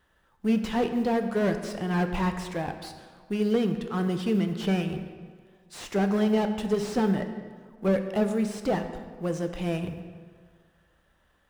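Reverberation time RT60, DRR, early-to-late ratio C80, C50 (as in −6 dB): 1.8 s, 6.5 dB, 10.0 dB, 8.5 dB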